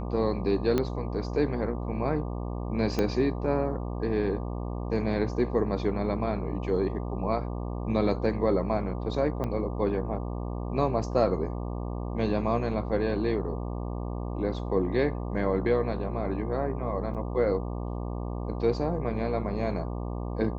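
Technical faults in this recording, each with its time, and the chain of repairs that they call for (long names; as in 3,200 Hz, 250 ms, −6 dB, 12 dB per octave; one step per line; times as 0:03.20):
mains buzz 60 Hz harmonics 20 −33 dBFS
0:00.78: click −13 dBFS
0:02.99: click −14 dBFS
0:09.44: click −20 dBFS
0:17.14–0:17.15: drop-out 7.7 ms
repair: click removal
hum removal 60 Hz, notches 20
repair the gap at 0:17.14, 7.7 ms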